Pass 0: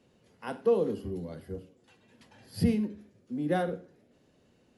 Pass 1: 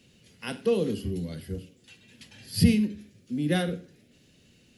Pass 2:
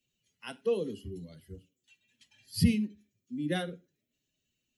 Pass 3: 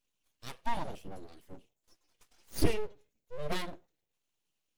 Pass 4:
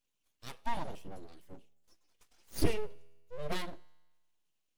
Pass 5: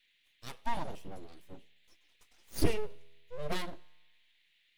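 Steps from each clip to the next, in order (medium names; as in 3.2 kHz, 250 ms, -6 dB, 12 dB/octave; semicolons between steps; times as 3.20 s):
FFT filter 160 Hz 0 dB, 950 Hz -13 dB, 2.6 kHz +5 dB; trim +7.5 dB
expander on every frequency bin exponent 1.5; trim -3.5 dB
full-wave rectifier
feedback comb 82 Hz, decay 1.2 s, harmonics all, mix 30%; trim +1 dB
band noise 1.8–3.9 kHz -73 dBFS; trim +1 dB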